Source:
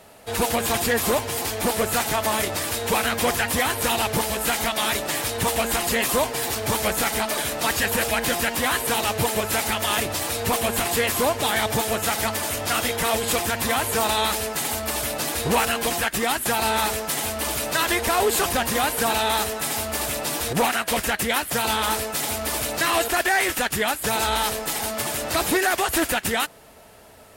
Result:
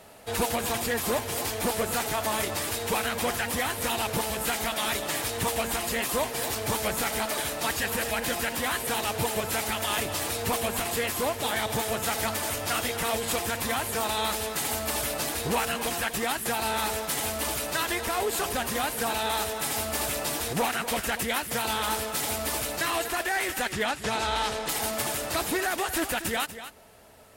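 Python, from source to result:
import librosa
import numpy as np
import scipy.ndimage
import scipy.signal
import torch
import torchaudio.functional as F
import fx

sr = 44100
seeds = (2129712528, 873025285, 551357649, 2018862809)

y = fx.lowpass(x, sr, hz=6400.0, slope=12, at=(23.72, 24.69))
y = fx.rider(y, sr, range_db=5, speed_s=0.5)
y = y + 10.0 ** (-12.0 / 20.0) * np.pad(y, (int(240 * sr / 1000.0), 0))[:len(y)]
y = y * 10.0 ** (-5.5 / 20.0)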